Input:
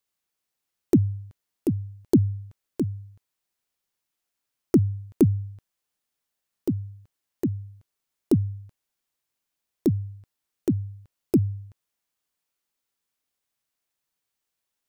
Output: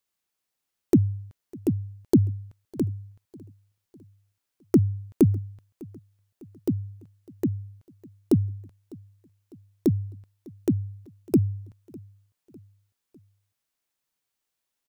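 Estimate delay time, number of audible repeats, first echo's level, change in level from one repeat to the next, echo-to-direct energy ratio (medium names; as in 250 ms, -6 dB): 602 ms, 2, -23.5 dB, -6.0 dB, -22.5 dB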